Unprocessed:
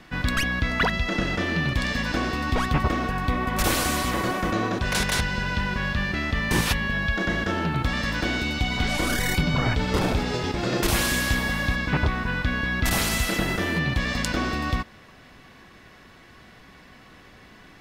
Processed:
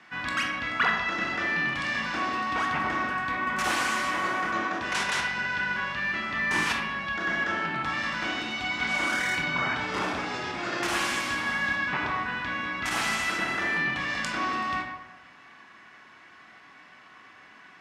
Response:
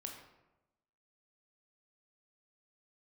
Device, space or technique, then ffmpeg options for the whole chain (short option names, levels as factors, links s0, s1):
supermarket ceiling speaker: -filter_complex "[0:a]highpass=280,lowpass=5400,equalizer=f=125:t=o:w=1:g=-4,equalizer=f=250:t=o:w=1:g=-7,equalizer=f=500:t=o:w=1:g=-12,equalizer=f=4000:t=o:w=1:g=-8[s0];[1:a]atrim=start_sample=2205[s1];[s0][s1]afir=irnorm=-1:irlink=0,volume=2.11"